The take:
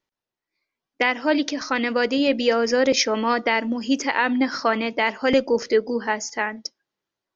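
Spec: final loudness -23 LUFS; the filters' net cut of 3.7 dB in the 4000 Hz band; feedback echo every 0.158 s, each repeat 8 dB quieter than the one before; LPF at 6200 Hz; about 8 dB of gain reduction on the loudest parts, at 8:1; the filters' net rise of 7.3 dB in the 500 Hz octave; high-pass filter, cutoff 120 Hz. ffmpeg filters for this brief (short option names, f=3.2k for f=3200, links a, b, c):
-af "highpass=120,lowpass=6.2k,equalizer=f=500:t=o:g=8,equalizer=f=4k:t=o:g=-4.5,acompressor=threshold=-15dB:ratio=8,aecho=1:1:158|316|474|632|790:0.398|0.159|0.0637|0.0255|0.0102,volume=-2dB"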